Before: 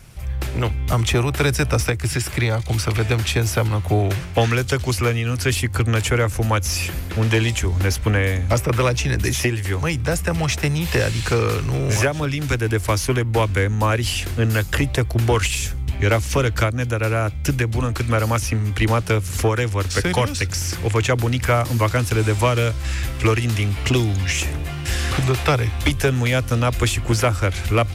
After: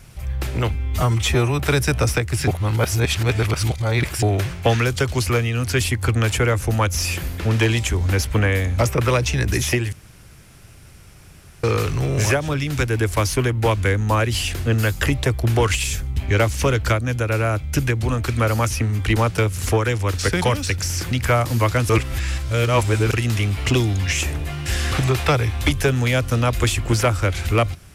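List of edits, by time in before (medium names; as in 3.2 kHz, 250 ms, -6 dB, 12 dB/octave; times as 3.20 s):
0.74–1.31 s: stretch 1.5×
2.19–3.94 s: reverse
9.64–11.35 s: room tone
20.83–21.31 s: delete
22.09–23.33 s: reverse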